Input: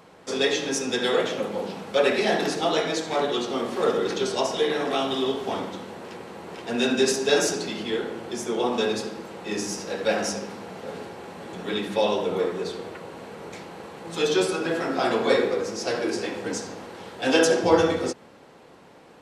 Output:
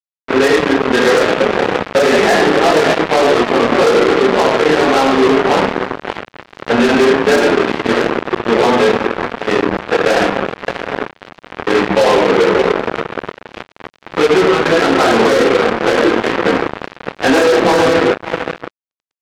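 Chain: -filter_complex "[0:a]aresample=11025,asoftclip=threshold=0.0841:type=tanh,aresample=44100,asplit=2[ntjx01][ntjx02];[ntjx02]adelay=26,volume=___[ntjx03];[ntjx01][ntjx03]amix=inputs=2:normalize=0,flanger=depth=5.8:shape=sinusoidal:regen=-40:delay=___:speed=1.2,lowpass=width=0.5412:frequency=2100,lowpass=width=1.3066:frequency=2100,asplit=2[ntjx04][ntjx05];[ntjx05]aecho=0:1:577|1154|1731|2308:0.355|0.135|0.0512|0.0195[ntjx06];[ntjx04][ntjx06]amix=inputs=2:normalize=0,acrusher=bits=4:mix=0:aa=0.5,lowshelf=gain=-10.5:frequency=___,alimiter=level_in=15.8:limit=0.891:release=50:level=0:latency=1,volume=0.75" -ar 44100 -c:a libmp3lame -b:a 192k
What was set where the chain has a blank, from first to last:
0.631, 2.1, 84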